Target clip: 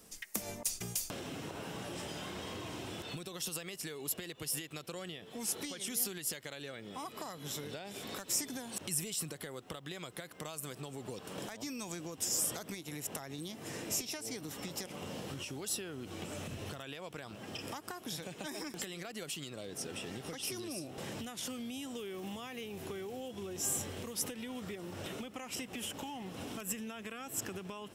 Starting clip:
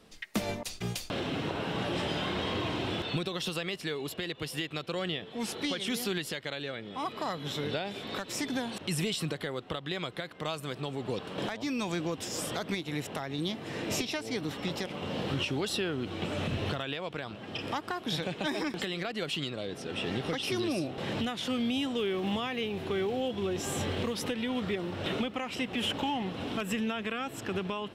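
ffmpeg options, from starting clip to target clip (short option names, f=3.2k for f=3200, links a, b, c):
-af "acompressor=threshold=-37dB:ratio=6,aexciter=amount=6.7:drive=2.6:freq=5.5k,volume=-3dB"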